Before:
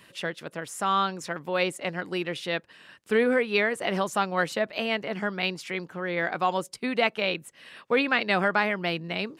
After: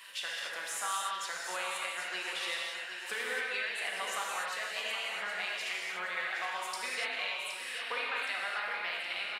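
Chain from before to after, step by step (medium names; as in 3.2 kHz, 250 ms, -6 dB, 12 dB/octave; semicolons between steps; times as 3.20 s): high-pass 1.2 kHz 12 dB/octave; compression 6:1, threshold -42 dBFS, peak gain reduction 20 dB; crackle 22 per s -59 dBFS; on a send: feedback delay 769 ms, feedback 50%, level -9 dB; on the sum: gated-style reverb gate 320 ms flat, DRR -3.5 dB; trim +4 dB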